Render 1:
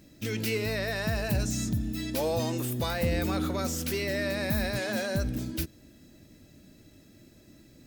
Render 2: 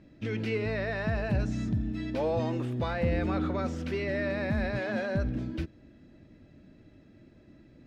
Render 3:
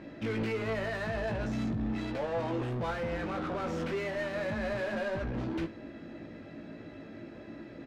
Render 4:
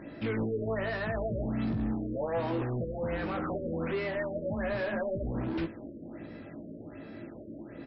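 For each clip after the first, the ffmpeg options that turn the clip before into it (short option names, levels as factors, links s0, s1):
-af "lowpass=2300"
-filter_complex "[0:a]alimiter=level_in=1.88:limit=0.0631:level=0:latency=1:release=12,volume=0.531,asplit=2[s0][s1];[s1]highpass=f=720:p=1,volume=14.1,asoftclip=type=tanh:threshold=0.0335[s2];[s0][s2]amix=inputs=2:normalize=0,lowpass=f=1400:p=1,volume=0.501,aecho=1:1:18|73:0.531|0.133,volume=1.12"
-af "afftfilt=real='re*lt(b*sr/1024,600*pow(5700/600,0.5+0.5*sin(2*PI*1.3*pts/sr)))':imag='im*lt(b*sr/1024,600*pow(5700/600,0.5+0.5*sin(2*PI*1.3*pts/sr)))':win_size=1024:overlap=0.75,volume=1.19"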